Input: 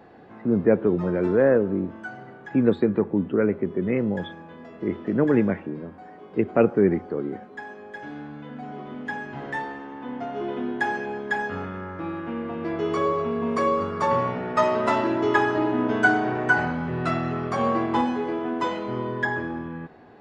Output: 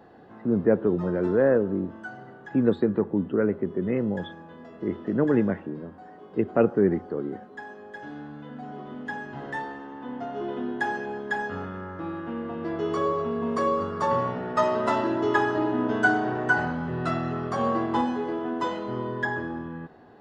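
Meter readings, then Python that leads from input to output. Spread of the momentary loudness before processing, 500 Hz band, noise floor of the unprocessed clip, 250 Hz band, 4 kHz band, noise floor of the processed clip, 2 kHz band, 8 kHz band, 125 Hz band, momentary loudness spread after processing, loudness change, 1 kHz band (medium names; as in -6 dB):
17 LU, -2.0 dB, -45 dBFS, -2.0 dB, -2.5 dB, -47 dBFS, -2.5 dB, no reading, -2.0 dB, 17 LU, -2.0 dB, -2.0 dB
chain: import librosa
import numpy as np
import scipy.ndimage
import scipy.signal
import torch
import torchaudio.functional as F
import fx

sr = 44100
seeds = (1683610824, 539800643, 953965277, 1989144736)

y = fx.peak_eq(x, sr, hz=2300.0, db=-10.5, octaves=0.23)
y = y * 10.0 ** (-2.0 / 20.0)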